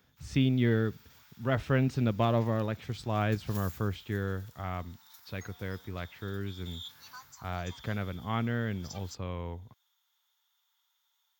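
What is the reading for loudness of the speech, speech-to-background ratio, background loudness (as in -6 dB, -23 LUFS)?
-32.5 LUFS, 18.5 dB, -51.0 LUFS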